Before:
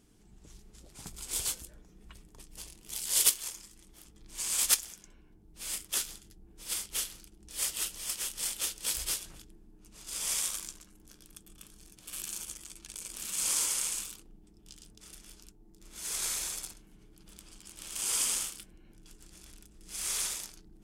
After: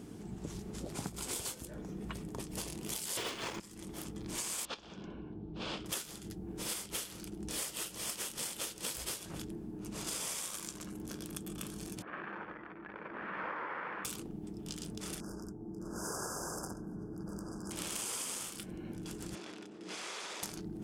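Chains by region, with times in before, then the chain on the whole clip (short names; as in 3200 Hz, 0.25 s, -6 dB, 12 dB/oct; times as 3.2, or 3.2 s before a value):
3.17–3.6 LPF 2900 Hz + sample leveller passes 5
4.65–5.86 LPF 3800 Hz 24 dB/oct + bell 2000 Hz -10.5 dB 0.48 oct
12.02–14.05 elliptic low-pass 1800 Hz, stop band 80 dB + tilt +4 dB/oct
15.2–17.71 brick-wall FIR band-stop 1700–4700 Hz + high shelf 3700 Hz -11.5 dB
19.35–20.43 BPF 330–4200 Hz + compressor 12:1, threshold -49 dBFS
whole clip: HPF 110 Hz 12 dB/oct; tilt shelf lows +6 dB, about 1400 Hz; compressor 16:1, threshold -49 dBFS; gain +13 dB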